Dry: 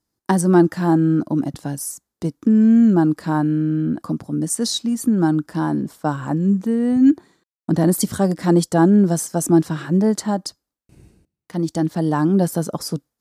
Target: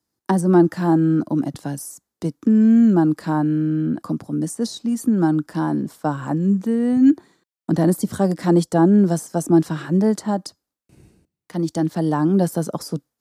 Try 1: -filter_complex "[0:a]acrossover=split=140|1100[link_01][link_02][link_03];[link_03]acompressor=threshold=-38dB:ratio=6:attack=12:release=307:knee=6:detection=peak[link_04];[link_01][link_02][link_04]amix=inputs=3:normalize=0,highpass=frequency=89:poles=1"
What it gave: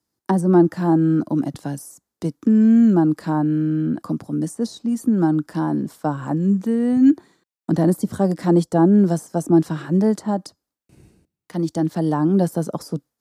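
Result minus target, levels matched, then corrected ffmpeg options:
downward compressor: peak gain reduction +5.5 dB
-filter_complex "[0:a]acrossover=split=140|1100[link_01][link_02][link_03];[link_03]acompressor=threshold=-31.5dB:ratio=6:attack=12:release=307:knee=6:detection=peak[link_04];[link_01][link_02][link_04]amix=inputs=3:normalize=0,highpass=frequency=89:poles=1"

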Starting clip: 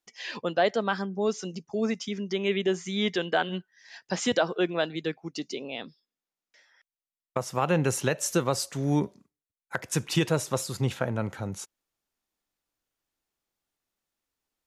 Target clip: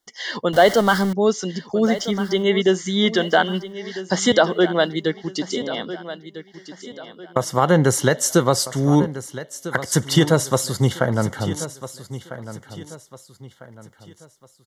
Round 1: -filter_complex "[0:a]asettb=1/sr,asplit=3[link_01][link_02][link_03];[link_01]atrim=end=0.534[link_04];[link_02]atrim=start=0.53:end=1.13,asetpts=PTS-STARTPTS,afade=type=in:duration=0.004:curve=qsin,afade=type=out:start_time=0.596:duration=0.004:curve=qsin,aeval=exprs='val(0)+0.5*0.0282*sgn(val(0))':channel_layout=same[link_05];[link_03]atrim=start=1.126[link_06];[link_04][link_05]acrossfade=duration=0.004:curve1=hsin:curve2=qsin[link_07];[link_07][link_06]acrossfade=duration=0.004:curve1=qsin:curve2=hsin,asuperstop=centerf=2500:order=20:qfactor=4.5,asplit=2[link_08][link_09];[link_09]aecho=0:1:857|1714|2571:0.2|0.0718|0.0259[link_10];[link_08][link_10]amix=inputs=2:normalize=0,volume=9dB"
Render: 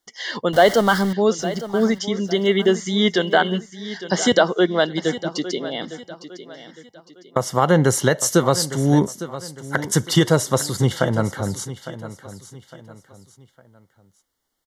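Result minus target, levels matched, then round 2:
echo 443 ms early
-filter_complex "[0:a]asettb=1/sr,asplit=3[link_01][link_02][link_03];[link_01]atrim=end=0.534[link_04];[link_02]atrim=start=0.53:end=1.13,asetpts=PTS-STARTPTS,afade=type=in:duration=0.004:curve=qsin,afade=type=out:start_time=0.596:duration=0.004:curve=qsin,aeval=exprs='val(0)+0.5*0.0282*sgn(val(0))':channel_layout=same[link_05];[link_03]atrim=start=1.126[link_06];[link_04][link_05]acrossfade=duration=0.004:curve1=hsin:curve2=qsin[link_07];[link_07][link_06]acrossfade=duration=0.004:curve1=qsin:curve2=hsin,asuperstop=centerf=2500:order=20:qfactor=4.5,asplit=2[link_08][link_09];[link_09]aecho=0:1:1300|2600|3900:0.2|0.0718|0.0259[link_10];[link_08][link_10]amix=inputs=2:normalize=0,volume=9dB"

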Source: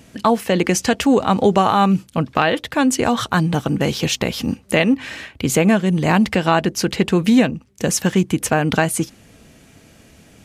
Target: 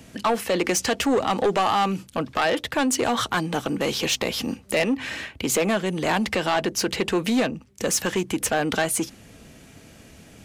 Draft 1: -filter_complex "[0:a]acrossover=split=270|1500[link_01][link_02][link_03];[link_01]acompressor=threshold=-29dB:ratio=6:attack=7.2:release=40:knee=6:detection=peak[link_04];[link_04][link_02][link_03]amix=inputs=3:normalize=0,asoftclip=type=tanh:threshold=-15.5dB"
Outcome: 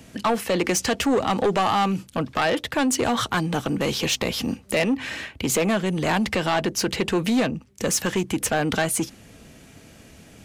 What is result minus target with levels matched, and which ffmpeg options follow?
downward compressor: peak gain reduction −7 dB
-filter_complex "[0:a]acrossover=split=270|1500[link_01][link_02][link_03];[link_01]acompressor=threshold=-37.5dB:ratio=6:attack=7.2:release=40:knee=6:detection=peak[link_04];[link_04][link_02][link_03]amix=inputs=3:normalize=0,asoftclip=type=tanh:threshold=-15.5dB"

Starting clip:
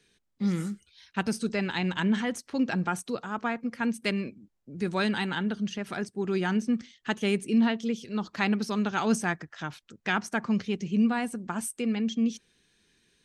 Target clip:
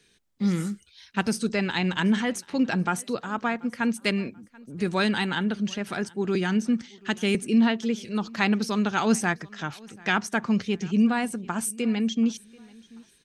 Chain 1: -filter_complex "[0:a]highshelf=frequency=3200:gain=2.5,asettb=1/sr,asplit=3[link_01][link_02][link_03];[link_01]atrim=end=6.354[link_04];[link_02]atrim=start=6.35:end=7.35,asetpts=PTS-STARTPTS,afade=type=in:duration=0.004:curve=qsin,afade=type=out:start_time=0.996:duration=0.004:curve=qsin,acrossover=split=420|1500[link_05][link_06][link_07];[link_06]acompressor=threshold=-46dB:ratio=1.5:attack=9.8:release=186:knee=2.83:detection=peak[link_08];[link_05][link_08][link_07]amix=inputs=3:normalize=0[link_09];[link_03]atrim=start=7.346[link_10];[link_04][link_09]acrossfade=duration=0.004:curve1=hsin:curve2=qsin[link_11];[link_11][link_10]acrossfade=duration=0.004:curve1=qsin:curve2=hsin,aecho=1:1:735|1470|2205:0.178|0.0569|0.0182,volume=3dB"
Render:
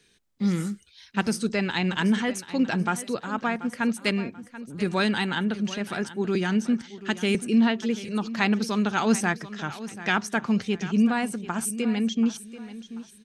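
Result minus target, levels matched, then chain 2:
echo-to-direct +9.5 dB
-filter_complex "[0:a]highshelf=frequency=3200:gain=2.5,asettb=1/sr,asplit=3[link_01][link_02][link_03];[link_01]atrim=end=6.354[link_04];[link_02]atrim=start=6.35:end=7.35,asetpts=PTS-STARTPTS,afade=type=in:duration=0.004:curve=qsin,afade=type=out:start_time=0.996:duration=0.004:curve=qsin,acrossover=split=420|1500[link_05][link_06][link_07];[link_06]acompressor=threshold=-46dB:ratio=1.5:attack=9.8:release=186:knee=2.83:detection=peak[link_08];[link_05][link_08][link_07]amix=inputs=3:normalize=0[link_09];[link_03]atrim=start=7.346[link_10];[link_04][link_09]acrossfade=duration=0.004:curve1=hsin:curve2=qsin[link_11];[link_11][link_10]acrossfade=duration=0.004:curve1=qsin:curve2=hsin,aecho=1:1:735|1470:0.0596|0.0191,volume=3dB"

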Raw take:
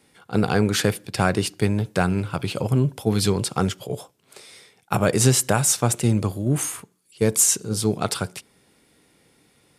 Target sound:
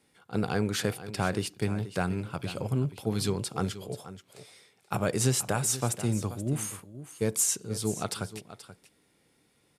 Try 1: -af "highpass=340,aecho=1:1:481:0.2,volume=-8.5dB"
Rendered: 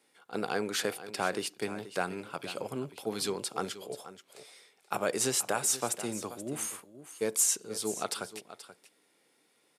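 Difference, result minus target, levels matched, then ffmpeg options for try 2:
250 Hz band −5.0 dB
-af "aecho=1:1:481:0.2,volume=-8.5dB"

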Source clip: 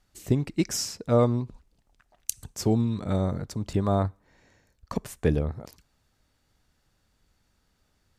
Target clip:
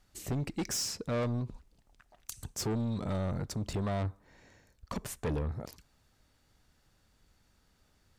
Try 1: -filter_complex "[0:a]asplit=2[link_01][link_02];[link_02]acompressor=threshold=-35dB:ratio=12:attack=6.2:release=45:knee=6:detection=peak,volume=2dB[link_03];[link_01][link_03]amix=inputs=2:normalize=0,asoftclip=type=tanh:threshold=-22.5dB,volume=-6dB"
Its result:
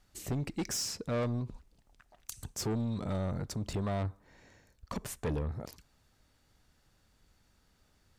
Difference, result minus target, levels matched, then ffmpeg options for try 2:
downward compressor: peak gain reduction +6 dB
-filter_complex "[0:a]asplit=2[link_01][link_02];[link_02]acompressor=threshold=-28.5dB:ratio=12:attack=6.2:release=45:knee=6:detection=peak,volume=2dB[link_03];[link_01][link_03]amix=inputs=2:normalize=0,asoftclip=type=tanh:threshold=-22.5dB,volume=-6dB"

